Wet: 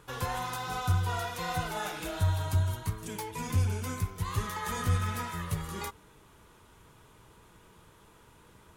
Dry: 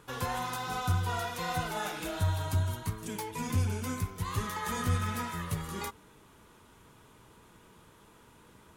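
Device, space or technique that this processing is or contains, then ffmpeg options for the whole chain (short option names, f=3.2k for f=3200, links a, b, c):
low shelf boost with a cut just above: -af "lowshelf=f=82:g=5,equalizer=f=240:t=o:w=0.55:g=-4.5"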